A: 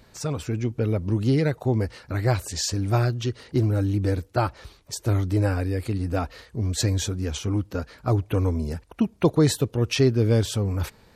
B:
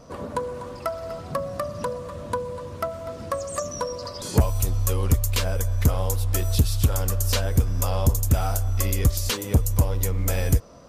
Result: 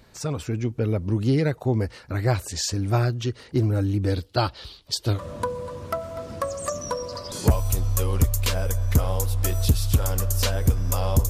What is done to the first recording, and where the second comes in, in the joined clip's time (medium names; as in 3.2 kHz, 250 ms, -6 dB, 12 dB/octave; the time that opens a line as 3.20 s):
A
4.10–5.21 s: high-order bell 3.8 kHz +11.5 dB 1 oct
5.16 s: go over to B from 2.06 s, crossfade 0.10 s